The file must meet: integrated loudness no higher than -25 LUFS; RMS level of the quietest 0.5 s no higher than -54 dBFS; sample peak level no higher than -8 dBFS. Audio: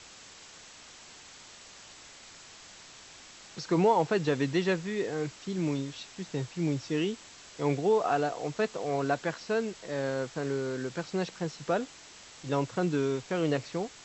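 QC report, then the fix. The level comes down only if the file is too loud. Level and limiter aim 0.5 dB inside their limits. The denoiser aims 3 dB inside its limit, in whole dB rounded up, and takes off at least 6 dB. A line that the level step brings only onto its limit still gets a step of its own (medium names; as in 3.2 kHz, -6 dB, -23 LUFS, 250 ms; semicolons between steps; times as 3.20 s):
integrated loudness -31.0 LUFS: pass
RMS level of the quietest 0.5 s -51 dBFS: fail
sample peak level -14.0 dBFS: pass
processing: noise reduction 6 dB, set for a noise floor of -51 dBFS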